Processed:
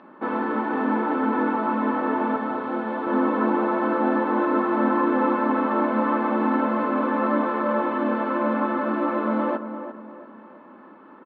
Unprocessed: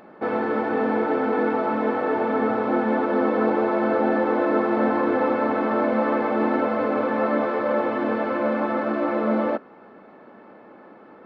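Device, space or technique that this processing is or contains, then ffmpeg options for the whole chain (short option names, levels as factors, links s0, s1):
kitchen radio: -filter_complex "[0:a]highpass=200,equalizer=f=260:t=q:w=4:g=5,equalizer=f=460:t=q:w=4:g=-7,equalizer=f=720:t=q:w=4:g=-8,equalizer=f=1000:t=q:w=4:g=7,equalizer=f=2200:t=q:w=4:g=-5,lowpass=f=3700:w=0.5412,lowpass=f=3700:w=1.3066,asettb=1/sr,asplit=3[s0][s1][s2];[s0]atrim=end=2.364[s3];[s1]atrim=start=2.36:end=3.07,asetpts=PTS-STARTPTS,afade=t=in:d=0.004:c=qsin,afade=t=out:st=0.706:d=0.004:c=qsin,equalizer=f=250:t=o:w=1:g=-8,equalizer=f=1000:t=o:w=1:g=-4,equalizer=f=2000:t=o:w=1:g=-3[s4];[s2]atrim=start=3.066[s5];[s3][s4]acrossfade=d=0.004:c1=hsin:c2=qsin[s6];[s6][s5]acrossfade=d=0.004:c1=qsin:c2=hsin,asplit=2[s7][s8];[s8]adelay=345,lowpass=f=1700:p=1,volume=0.335,asplit=2[s9][s10];[s10]adelay=345,lowpass=f=1700:p=1,volume=0.4,asplit=2[s11][s12];[s12]adelay=345,lowpass=f=1700:p=1,volume=0.4,asplit=2[s13][s14];[s14]adelay=345,lowpass=f=1700:p=1,volume=0.4[s15];[s7][s9][s11][s13][s15]amix=inputs=5:normalize=0"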